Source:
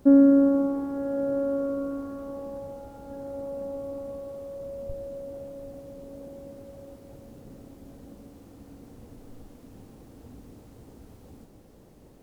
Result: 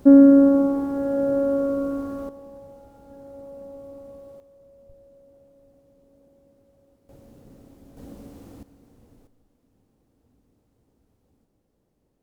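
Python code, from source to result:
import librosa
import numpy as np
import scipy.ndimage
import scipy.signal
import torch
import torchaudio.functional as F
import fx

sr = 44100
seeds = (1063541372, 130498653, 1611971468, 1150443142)

y = fx.gain(x, sr, db=fx.steps((0.0, 5.0), (2.29, -6.0), (4.4, -15.5), (7.09, -3.0), (7.97, 4.5), (8.63, -7.5), (9.27, -18.0)))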